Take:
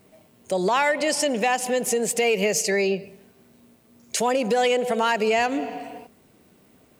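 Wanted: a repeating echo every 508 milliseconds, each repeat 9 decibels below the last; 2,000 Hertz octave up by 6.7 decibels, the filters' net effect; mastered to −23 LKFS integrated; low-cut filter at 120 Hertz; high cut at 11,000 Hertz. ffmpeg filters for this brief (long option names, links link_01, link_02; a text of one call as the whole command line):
ffmpeg -i in.wav -af "highpass=120,lowpass=11000,equalizer=frequency=2000:width_type=o:gain=8,aecho=1:1:508|1016|1524|2032:0.355|0.124|0.0435|0.0152,volume=-2.5dB" out.wav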